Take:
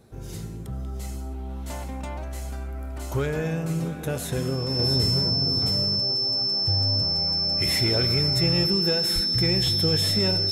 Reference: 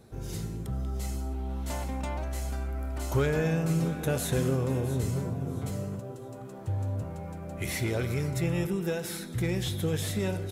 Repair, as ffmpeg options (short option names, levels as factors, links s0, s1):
-filter_complex "[0:a]bandreject=f=5300:w=30,asplit=3[s0][s1][s2];[s0]afade=t=out:st=9.14:d=0.02[s3];[s1]highpass=f=140:w=0.5412,highpass=f=140:w=1.3066,afade=t=in:st=9.14:d=0.02,afade=t=out:st=9.26:d=0.02[s4];[s2]afade=t=in:st=9.26:d=0.02[s5];[s3][s4][s5]amix=inputs=3:normalize=0,asetnsamples=n=441:p=0,asendcmd='4.79 volume volume -4.5dB',volume=1"